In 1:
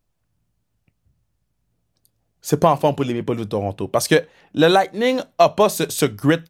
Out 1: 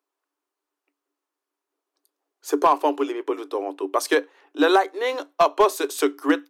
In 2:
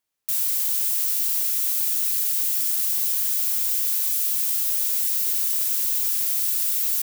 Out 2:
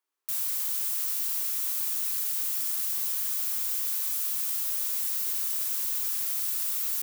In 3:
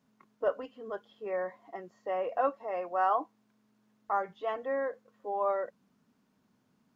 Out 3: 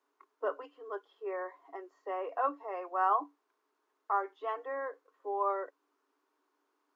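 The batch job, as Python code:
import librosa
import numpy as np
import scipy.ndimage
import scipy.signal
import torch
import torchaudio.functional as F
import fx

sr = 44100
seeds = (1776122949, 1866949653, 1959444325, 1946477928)

y = scipy.signal.sosfilt(scipy.signal.cheby1(6, 9, 280.0, 'highpass', fs=sr, output='sos'), x)
y = np.clip(y, -10.0 ** (-11.0 / 20.0), 10.0 ** (-11.0 / 20.0))
y = F.gain(torch.from_numpy(y), 2.5).numpy()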